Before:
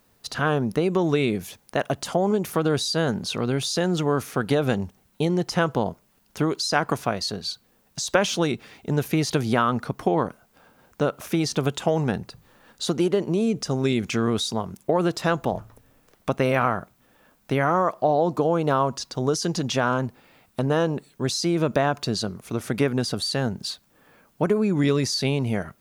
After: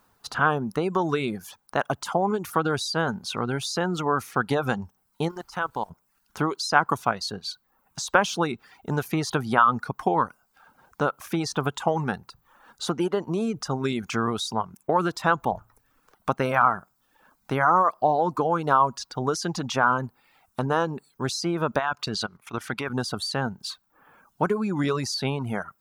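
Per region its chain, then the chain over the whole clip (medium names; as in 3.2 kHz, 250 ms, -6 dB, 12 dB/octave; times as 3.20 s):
5.28–5.89 s: bass shelf 470 Hz -8 dB + level held to a coarse grid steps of 14 dB + added noise pink -56 dBFS
21.79–22.90 s: peaking EQ 2.7 kHz +9 dB 2.2 oct + level held to a coarse grid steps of 13 dB
whole clip: high-order bell 1.1 kHz +8.5 dB 1.2 oct; reverb removal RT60 0.66 s; trim -3 dB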